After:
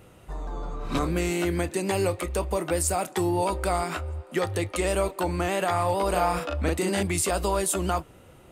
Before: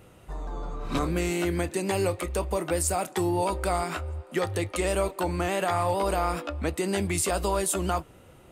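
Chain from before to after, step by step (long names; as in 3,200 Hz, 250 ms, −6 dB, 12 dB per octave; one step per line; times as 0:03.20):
0:06.10–0:07.03: double-tracking delay 39 ms −2 dB
level +1 dB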